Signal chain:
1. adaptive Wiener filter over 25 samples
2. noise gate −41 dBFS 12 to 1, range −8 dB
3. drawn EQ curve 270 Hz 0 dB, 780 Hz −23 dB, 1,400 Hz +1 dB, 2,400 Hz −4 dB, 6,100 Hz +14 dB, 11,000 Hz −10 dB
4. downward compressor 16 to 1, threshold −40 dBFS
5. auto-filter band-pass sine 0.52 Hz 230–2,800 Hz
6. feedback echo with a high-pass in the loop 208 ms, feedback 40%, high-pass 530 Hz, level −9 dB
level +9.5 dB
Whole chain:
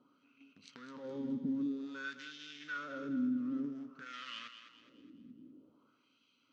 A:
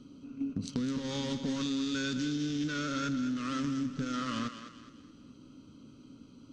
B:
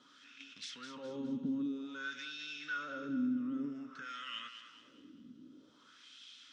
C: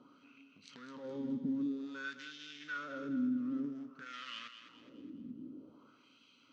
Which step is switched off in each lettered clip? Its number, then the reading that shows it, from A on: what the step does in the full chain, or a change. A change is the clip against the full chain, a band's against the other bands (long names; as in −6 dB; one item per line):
5, 125 Hz band +9.0 dB
1, 4 kHz band +5.0 dB
2, change in momentary loudness spread −3 LU